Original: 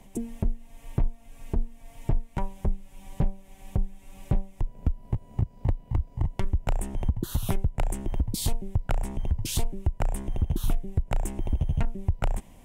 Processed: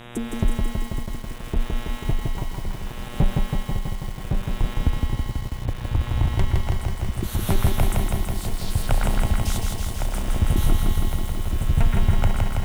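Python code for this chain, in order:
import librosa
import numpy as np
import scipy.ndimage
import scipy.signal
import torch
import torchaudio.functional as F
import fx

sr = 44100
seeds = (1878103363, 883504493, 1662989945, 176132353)

p1 = x + fx.echo_stepped(x, sr, ms=120, hz=1600.0, octaves=1.4, feedback_pct=70, wet_db=-0.5, dry=0)
p2 = fx.dmg_buzz(p1, sr, base_hz=120.0, harmonics=32, level_db=-44.0, tilt_db=-3, odd_only=False)
p3 = fx.tremolo_shape(p2, sr, shape='triangle', hz=0.69, depth_pct=90)
p4 = fx.echo_crushed(p3, sr, ms=163, feedback_pct=80, bits=8, wet_db=-3)
y = p4 * librosa.db_to_amplitude(6.0)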